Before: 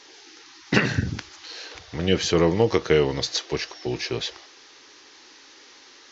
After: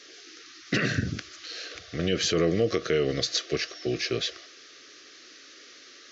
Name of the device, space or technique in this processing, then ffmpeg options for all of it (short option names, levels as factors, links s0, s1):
PA system with an anti-feedback notch: -af "highpass=f=110:p=1,asuperstop=centerf=900:order=8:qfactor=2.3,alimiter=limit=0.2:level=0:latency=1:release=77"